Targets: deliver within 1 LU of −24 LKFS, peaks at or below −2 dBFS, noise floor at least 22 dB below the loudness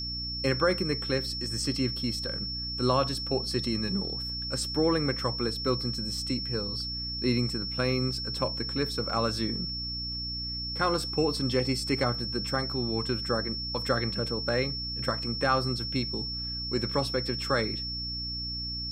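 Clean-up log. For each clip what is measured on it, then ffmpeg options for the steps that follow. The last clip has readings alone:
mains hum 60 Hz; hum harmonics up to 300 Hz; level of the hum −37 dBFS; interfering tone 5,400 Hz; level of the tone −33 dBFS; integrated loudness −29.0 LKFS; sample peak −11.5 dBFS; target loudness −24.0 LKFS
→ -af "bandreject=frequency=60:width_type=h:width=4,bandreject=frequency=120:width_type=h:width=4,bandreject=frequency=180:width_type=h:width=4,bandreject=frequency=240:width_type=h:width=4,bandreject=frequency=300:width_type=h:width=4"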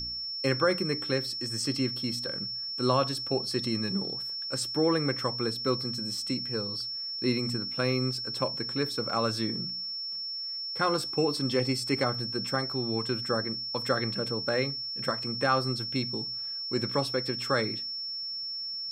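mains hum none found; interfering tone 5,400 Hz; level of the tone −33 dBFS
→ -af "bandreject=frequency=5400:width=30"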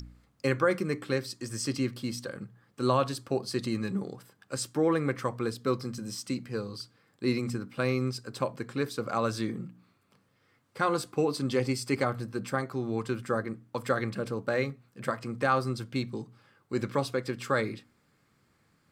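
interfering tone none found; integrated loudness −31.5 LKFS; sample peak −11.0 dBFS; target loudness −24.0 LKFS
→ -af "volume=7.5dB"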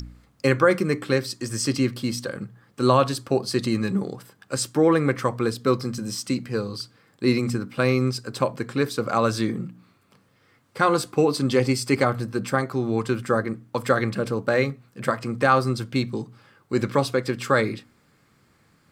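integrated loudness −24.0 LKFS; sample peak −3.5 dBFS; background noise floor −62 dBFS

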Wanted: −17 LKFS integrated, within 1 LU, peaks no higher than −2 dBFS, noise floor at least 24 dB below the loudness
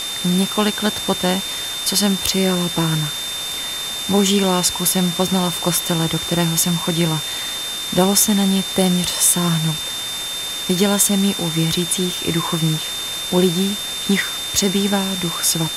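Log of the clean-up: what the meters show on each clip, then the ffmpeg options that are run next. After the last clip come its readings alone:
interfering tone 3,600 Hz; level of the tone −25 dBFS; background noise floor −26 dBFS; target noise floor −42 dBFS; integrated loudness −18.0 LKFS; sample peak −1.5 dBFS; target loudness −17.0 LKFS
→ -af "bandreject=frequency=3600:width=30"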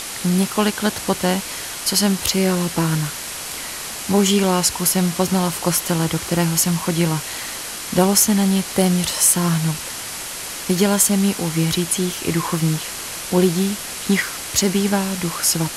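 interfering tone none found; background noise floor −30 dBFS; target noise floor −43 dBFS
→ -af "afftdn=noise_reduction=13:noise_floor=-30"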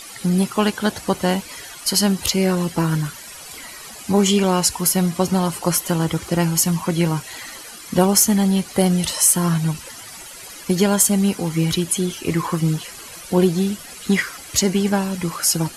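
background noise floor −38 dBFS; target noise floor −43 dBFS
→ -af "afftdn=noise_reduction=6:noise_floor=-38"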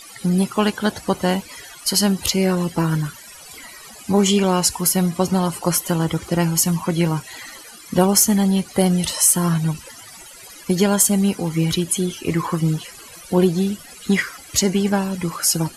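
background noise floor −41 dBFS; target noise floor −43 dBFS
→ -af "afftdn=noise_reduction=6:noise_floor=-41"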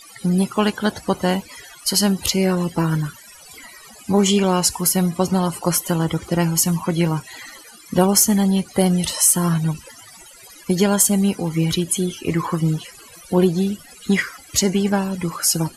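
background noise floor −44 dBFS; integrated loudness −19.0 LKFS; sample peak −1.5 dBFS; target loudness −17.0 LKFS
→ -af "volume=2dB,alimiter=limit=-2dB:level=0:latency=1"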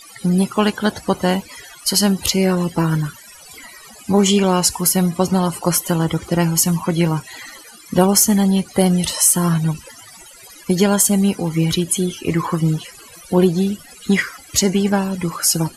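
integrated loudness −17.5 LKFS; sample peak −2.0 dBFS; background noise floor −42 dBFS

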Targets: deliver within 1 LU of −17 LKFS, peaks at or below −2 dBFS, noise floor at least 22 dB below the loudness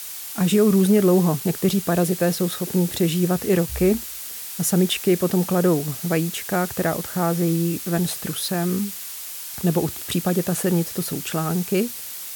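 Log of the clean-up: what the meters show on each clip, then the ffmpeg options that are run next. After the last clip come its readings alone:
background noise floor −34 dBFS; target noise floor −44 dBFS; integrated loudness −22.0 LKFS; sample peak −8.0 dBFS; target loudness −17.0 LKFS
→ -af "afftdn=noise_reduction=10:noise_floor=-34"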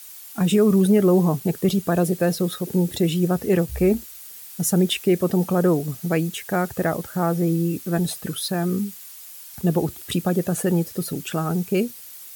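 background noise floor −41 dBFS; target noise floor −44 dBFS
→ -af "afftdn=noise_reduction=6:noise_floor=-41"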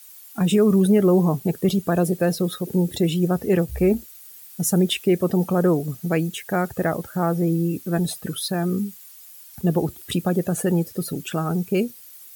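background noise floor −45 dBFS; integrated loudness −22.0 LKFS; sample peak −9.0 dBFS; target loudness −17.0 LKFS
→ -af "volume=5dB"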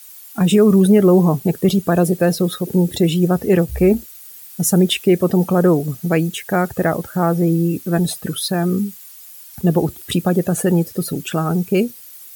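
integrated loudness −17.0 LKFS; sample peak −4.0 dBFS; background noise floor −40 dBFS

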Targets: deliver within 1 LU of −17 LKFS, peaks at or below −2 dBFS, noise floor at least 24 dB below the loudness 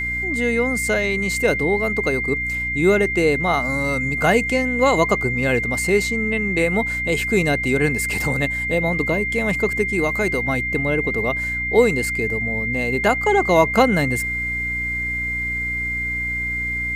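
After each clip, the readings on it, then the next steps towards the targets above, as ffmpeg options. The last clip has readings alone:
mains hum 60 Hz; hum harmonics up to 300 Hz; level of the hum −30 dBFS; interfering tone 2,100 Hz; level of the tone −22 dBFS; integrated loudness −19.5 LKFS; sample peak −1.0 dBFS; target loudness −17.0 LKFS
→ -af "bandreject=frequency=60:width_type=h:width=6,bandreject=frequency=120:width_type=h:width=6,bandreject=frequency=180:width_type=h:width=6,bandreject=frequency=240:width_type=h:width=6,bandreject=frequency=300:width_type=h:width=6"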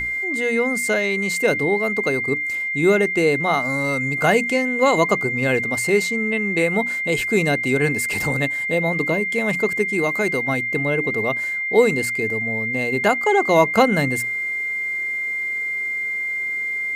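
mains hum none found; interfering tone 2,100 Hz; level of the tone −22 dBFS
→ -af "bandreject=frequency=2100:width=30"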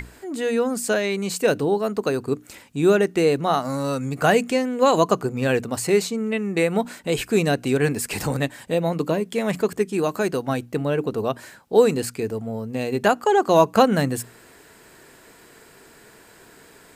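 interfering tone none found; integrated loudness −22.0 LKFS; sample peak −2.0 dBFS; target loudness −17.0 LKFS
→ -af "volume=5dB,alimiter=limit=-2dB:level=0:latency=1"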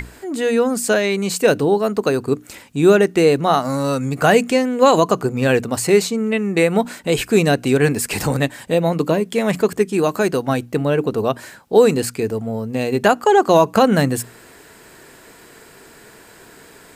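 integrated loudness −17.5 LKFS; sample peak −2.0 dBFS; background noise floor −45 dBFS

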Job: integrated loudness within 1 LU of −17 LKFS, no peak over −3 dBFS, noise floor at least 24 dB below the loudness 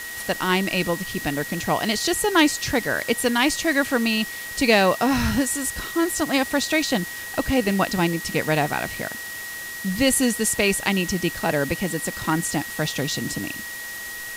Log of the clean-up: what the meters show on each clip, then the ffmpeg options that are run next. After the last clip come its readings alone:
interfering tone 1,900 Hz; level of the tone −33 dBFS; background noise floor −34 dBFS; target noise floor −47 dBFS; integrated loudness −22.5 LKFS; sample peak −5.0 dBFS; target loudness −17.0 LKFS
→ -af "bandreject=frequency=1900:width=30"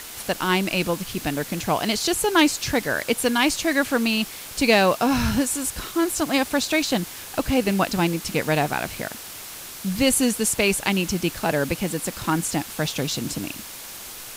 interfering tone none found; background noise floor −38 dBFS; target noise floor −47 dBFS
→ -af "afftdn=noise_reduction=9:noise_floor=-38"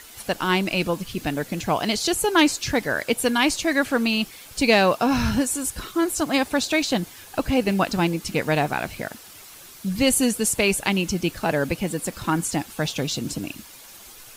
background noise floor −45 dBFS; target noise floor −47 dBFS
→ -af "afftdn=noise_reduction=6:noise_floor=-45"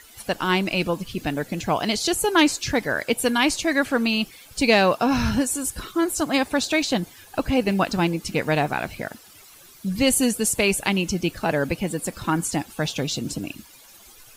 background noise floor −49 dBFS; integrated loudness −23.0 LKFS; sample peak −5.5 dBFS; target loudness −17.0 LKFS
→ -af "volume=6dB,alimiter=limit=-3dB:level=0:latency=1"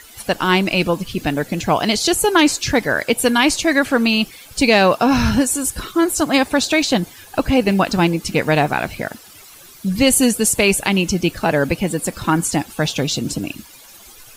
integrated loudness −17.0 LKFS; sample peak −3.0 dBFS; background noise floor −43 dBFS

